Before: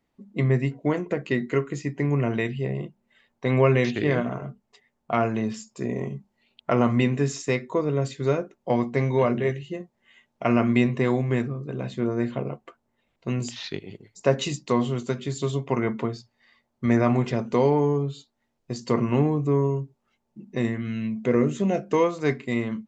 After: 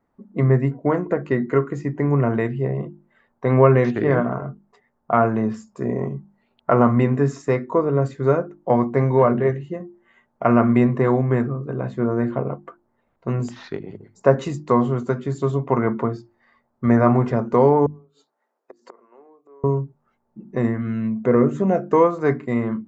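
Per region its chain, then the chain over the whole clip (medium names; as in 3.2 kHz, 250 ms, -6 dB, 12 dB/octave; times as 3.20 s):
17.86–19.64 s: inverted gate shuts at -19 dBFS, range -28 dB + high-pass 370 Hz 24 dB/octave + compression 2:1, threshold -48 dBFS
whole clip: resonant high shelf 2 kHz -12.5 dB, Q 1.5; hum notches 50/100/150/200/250/300/350 Hz; trim +5 dB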